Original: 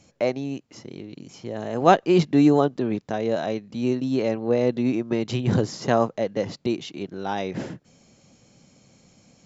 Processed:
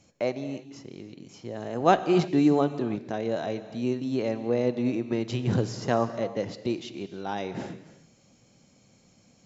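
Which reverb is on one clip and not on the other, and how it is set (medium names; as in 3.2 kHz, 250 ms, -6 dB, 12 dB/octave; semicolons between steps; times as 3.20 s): gated-style reverb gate 350 ms flat, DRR 11 dB; trim -4.5 dB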